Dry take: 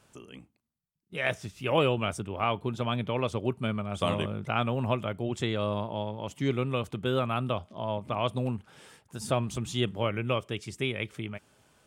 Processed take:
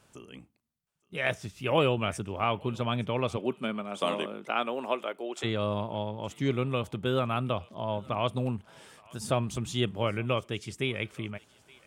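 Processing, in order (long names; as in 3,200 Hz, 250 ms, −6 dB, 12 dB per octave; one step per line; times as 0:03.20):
0:03.36–0:05.43: high-pass filter 170 Hz → 370 Hz 24 dB per octave
feedback echo with a high-pass in the loop 870 ms, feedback 33%, high-pass 980 Hz, level −22 dB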